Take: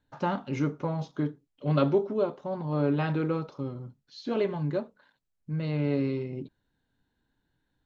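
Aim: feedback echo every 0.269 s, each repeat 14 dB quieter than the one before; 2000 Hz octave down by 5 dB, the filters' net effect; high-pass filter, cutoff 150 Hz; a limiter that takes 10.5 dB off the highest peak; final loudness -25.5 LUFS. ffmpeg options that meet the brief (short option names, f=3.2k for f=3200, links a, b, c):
-af "highpass=150,equalizer=f=2k:t=o:g=-7,alimiter=limit=-21.5dB:level=0:latency=1,aecho=1:1:269|538:0.2|0.0399,volume=7.5dB"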